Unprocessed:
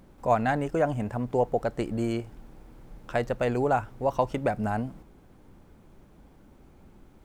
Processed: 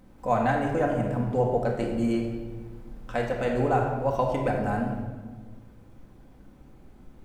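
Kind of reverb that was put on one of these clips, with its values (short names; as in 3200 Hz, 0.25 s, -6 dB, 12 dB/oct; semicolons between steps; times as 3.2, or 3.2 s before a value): shoebox room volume 1200 m³, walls mixed, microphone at 2 m; gain -3 dB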